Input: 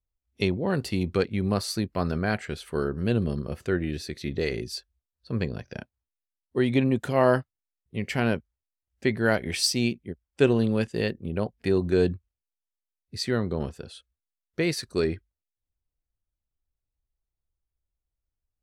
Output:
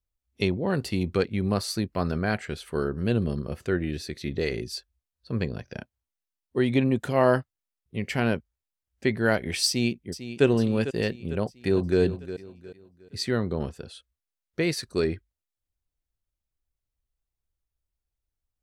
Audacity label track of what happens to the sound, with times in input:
9.670000	10.450000	echo throw 0.45 s, feedback 55%, level -12 dB
11.320000	12.000000	echo throw 0.36 s, feedback 35%, level -12.5 dB

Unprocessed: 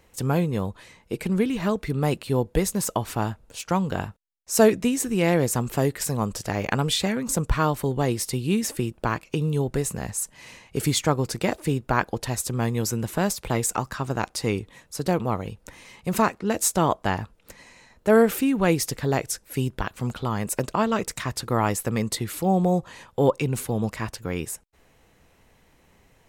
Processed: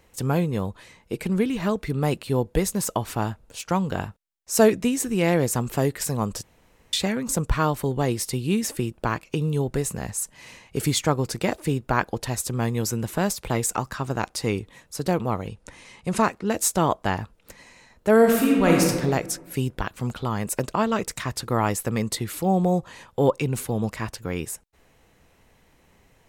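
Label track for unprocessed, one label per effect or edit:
6.430000	6.930000	room tone
15.480000	16.230000	steep low-pass 11000 Hz 48 dB/oct
18.170000	18.840000	reverb throw, RT60 1.4 s, DRR -1 dB

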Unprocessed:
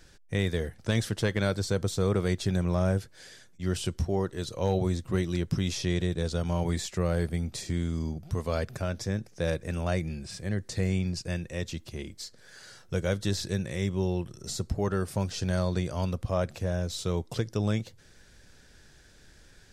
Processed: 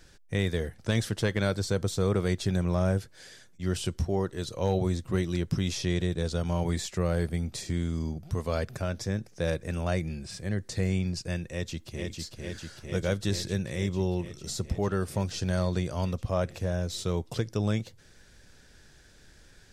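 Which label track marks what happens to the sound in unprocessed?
11.480000	12.170000	echo throw 0.45 s, feedback 80%, level -3.5 dB

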